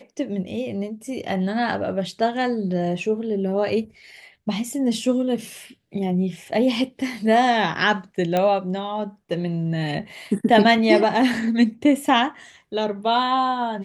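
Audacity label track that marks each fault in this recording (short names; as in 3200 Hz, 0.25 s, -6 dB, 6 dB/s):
8.370000	8.370000	pop -9 dBFS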